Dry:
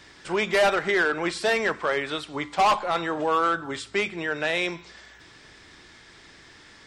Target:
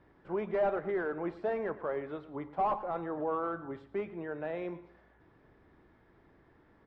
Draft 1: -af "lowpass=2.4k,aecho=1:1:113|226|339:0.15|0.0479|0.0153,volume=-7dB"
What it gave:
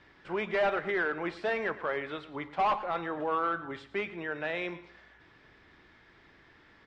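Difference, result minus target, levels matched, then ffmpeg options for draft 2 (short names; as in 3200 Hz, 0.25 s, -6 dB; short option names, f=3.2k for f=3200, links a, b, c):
2000 Hz band +8.0 dB
-af "lowpass=870,aecho=1:1:113|226|339:0.15|0.0479|0.0153,volume=-7dB"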